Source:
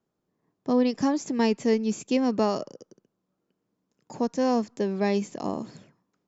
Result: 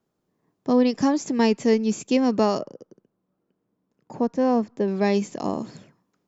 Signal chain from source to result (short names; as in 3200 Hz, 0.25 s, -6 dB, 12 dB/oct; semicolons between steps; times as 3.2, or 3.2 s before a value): 2.59–4.88 LPF 1500 Hz 6 dB/oct; gain +3.5 dB